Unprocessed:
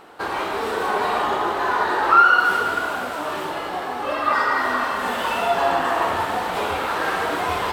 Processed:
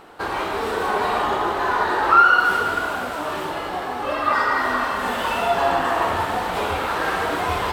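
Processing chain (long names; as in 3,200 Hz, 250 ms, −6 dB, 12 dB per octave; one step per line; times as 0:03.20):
low-shelf EQ 92 Hz +10 dB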